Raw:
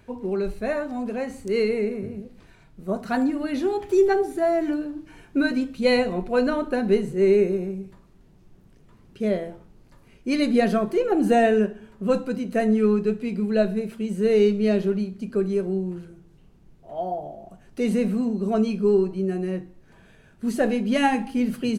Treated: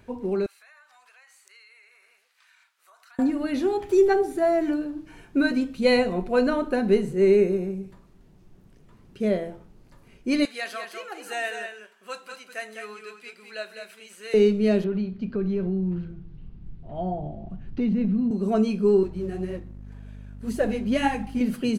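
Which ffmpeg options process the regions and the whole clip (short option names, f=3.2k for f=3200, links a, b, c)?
-filter_complex "[0:a]asettb=1/sr,asplit=3[a][b][c];[a]atrim=end=0.464[d];[b]atrim=start=0.46:end=3.19,asetpts=PTS-STARTPTS,afade=t=in:d=0.004:c=qsin,afade=t=out:st=2.726:d=0.004:c=qsin,highpass=f=1.2k:w=0.5412,highpass=f=1.2k:w=1.3066,acompressor=threshold=-54dB:ratio=4:attack=3.2:release=140:knee=1:detection=peak[e];[c]atrim=start=3.186[f];[d][e]acrossfade=d=0.004:c1=hsin:c2=qsin[g];[g][f]acrossfade=d=0.004:c1=qsin:c2=hsin,asettb=1/sr,asplit=3[h][i][j];[h]atrim=end=10.454[k];[i]atrim=start=10.45:end=14.34,asetpts=PTS-STARTPTS,afade=t=in:d=0.004:c=qsin,afade=t=out:st=3.886:d=0.004:c=qsin,highpass=1.4k,aecho=1:1:204:0.473,atrim=end_sample=171549[l];[j]atrim=start=14.336[m];[k][l]acrossfade=d=0.004:c1=hsin:c2=qsin[n];[n][m]acrossfade=d=0.004:c1=qsin:c2=hsin,asettb=1/sr,asplit=3[o][p][q];[o]atrim=end=14.844[r];[p]atrim=start=14.84:end=18.31,asetpts=PTS-STARTPTS,afade=t=in:d=0.004:c=qsin,afade=t=out:st=3.466:d=0.004:c=qsin,asubboost=boost=9:cutoff=210,acompressor=threshold=-22dB:ratio=4:attack=3.2:release=140:knee=1:detection=peak,lowpass=f=4.3k:w=0.5412,lowpass=f=4.3k:w=1.3066[s];[q]atrim=start=18.306[t];[r][s]acrossfade=d=0.004:c1=hsin:c2=qsin[u];[u][t]acrossfade=d=0.004:c1=qsin:c2=hsin,asettb=1/sr,asplit=3[v][w][x];[v]atrim=end=19.034[y];[w]atrim=start=19.03:end=21.41,asetpts=PTS-STARTPTS,afade=t=in:d=0.004:c=qsin,afade=t=out:st=2.376:d=0.004:c=qsin,flanger=delay=1.6:depth=8:regen=11:speed=1.9:shape=triangular,aeval=exprs='val(0)+0.0126*(sin(2*PI*50*n/s)+sin(2*PI*2*50*n/s)/2+sin(2*PI*3*50*n/s)/3+sin(2*PI*4*50*n/s)/4+sin(2*PI*5*50*n/s)/5)':c=same,aeval=exprs='sgn(val(0))*max(abs(val(0))-0.00211,0)':c=same[z];[x]atrim=start=21.406[aa];[y][z]acrossfade=d=0.004:c1=hsin:c2=qsin[ab];[ab][aa]acrossfade=d=0.004:c1=qsin:c2=hsin"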